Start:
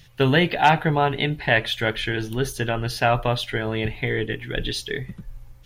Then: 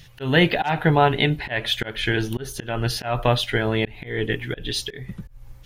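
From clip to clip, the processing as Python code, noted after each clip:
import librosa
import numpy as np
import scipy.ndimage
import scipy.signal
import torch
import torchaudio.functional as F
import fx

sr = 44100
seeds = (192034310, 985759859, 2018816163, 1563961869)

y = fx.auto_swell(x, sr, attack_ms=239.0)
y = y * 10.0 ** (3.5 / 20.0)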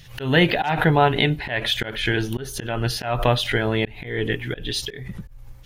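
y = fx.pre_swell(x, sr, db_per_s=110.0)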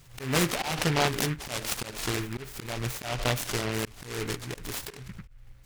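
y = fx.noise_mod_delay(x, sr, seeds[0], noise_hz=1700.0, depth_ms=0.2)
y = y * 10.0 ** (-8.5 / 20.0)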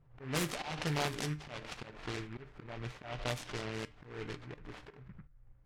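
y = fx.comb_fb(x, sr, f0_hz=150.0, decay_s=0.35, harmonics='all', damping=0.0, mix_pct=50)
y = fx.env_lowpass(y, sr, base_hz=980.0, full_db=-26.0)
y = y * 10.0 ** (-4.5 / 20.0)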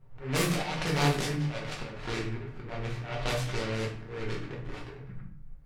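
y = fx.room_shoebox(x, sr, seeds[1], volume_m3=72.0, walls='mixed', distance_m=1.0)
y = y * 10.0 ** (2.5 / 20.0)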